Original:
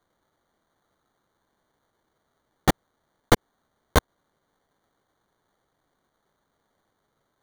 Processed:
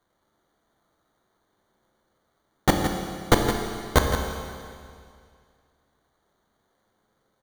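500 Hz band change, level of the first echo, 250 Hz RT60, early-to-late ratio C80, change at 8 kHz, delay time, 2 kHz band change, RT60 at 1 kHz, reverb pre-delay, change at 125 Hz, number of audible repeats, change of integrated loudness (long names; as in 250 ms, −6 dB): +3.0 dB, −8.5 dB, 2.2 s, 3.5 dB, +2.0 dB, 166 ms, +2.0 dB, 2.2 s, 10 ms, +2.5 dB, 1, +0.5 dB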